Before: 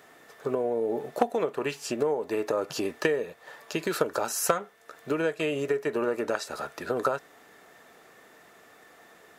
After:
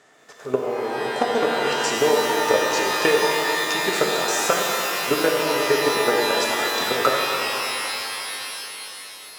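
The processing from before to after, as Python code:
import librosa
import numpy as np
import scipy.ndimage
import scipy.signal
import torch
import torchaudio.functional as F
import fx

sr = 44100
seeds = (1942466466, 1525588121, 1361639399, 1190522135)

y = fx.low_shelf(x, sr, hz=64.0, db=-10.0)
y = fx.level_steps(y, sr, step_db=13)
y = fx.lowpass_res(y, sr, hz=7400.0, q=1.6)
y = fx.rev_shimmer(y, sr, seeds[0], rt60_s=3.6, semitones=12, shimmer_db=-2, drr_db=-0.5)
y = F.gain(torch.from_numpy(y), 8.0).numpy()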